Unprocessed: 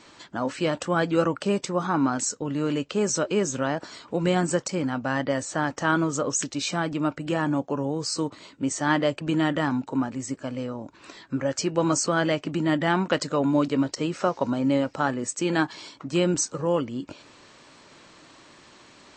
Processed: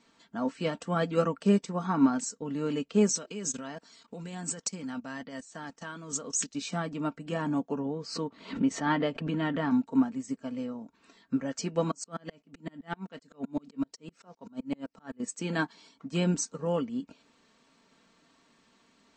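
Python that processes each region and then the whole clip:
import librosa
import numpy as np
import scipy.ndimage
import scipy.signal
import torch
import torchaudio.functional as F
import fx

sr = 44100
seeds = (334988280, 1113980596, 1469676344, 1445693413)

y = fx.chain(x, sr, fx.level_steps(step_db=16),
    fx.high_shelf(hz=2600.0, db=10.5), at=(3.09, 6.55))
y = fx.chain(y, sr, fx.lowpass(hz=3800.0, slope=12),
    fx.pre_swell(db_per_s=68.0), at=(7.79, 9.71))
y = fx.chain(y, sr, fx.high_shelf(hz=5100.0, db=3.0),
    fx.tremolo_decay(direction='swelling', hz=7.8, depth_db=33), at=(11.91, 15.2))
y = fx.peak_eq(y, sr, hz=210.0, db=5.0, octaves=1.1)
y = y + 0.54 * np.pad(y, (int(4.4 * sr / 1000.0), 0))[:len(y)]
y = fx.upward_expand(y, sr, threshold_db=-38.0, expansion=1.5)
y = y * librosa.db_to_amplitude(-3.5)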